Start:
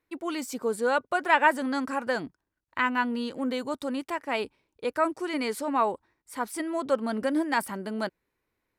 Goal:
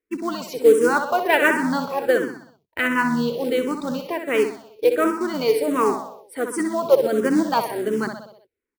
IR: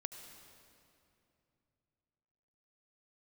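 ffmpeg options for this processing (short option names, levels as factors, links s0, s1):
-filter_complex "[0:a]afftdn=nr=15:nf=-48,equalizer=f=430:w=2.6:g=10,asplit=2[s0][s1];[s1]asetrate=29433,aresample=44100,atempo=1.49831,volume=0.2[s2];[s0][s2]amix=inputs=2:normalize=0,acrusher=bits=5:mode=log:mix=0:aa=0.000001,asplit=2[s3][s4];[s4]aecho=0:1:63|126|189|252|315|378:0.422|0.223|0.118|0.0628|0.0333|0.0176[s5];[s3][s5]amix=inputs=2:normalize=0,asplit=2[s6][s7];[s7]afreqshift=-1.4[s8];[s6][s8]amix=inputs=2:normalize=1,volume=2.11"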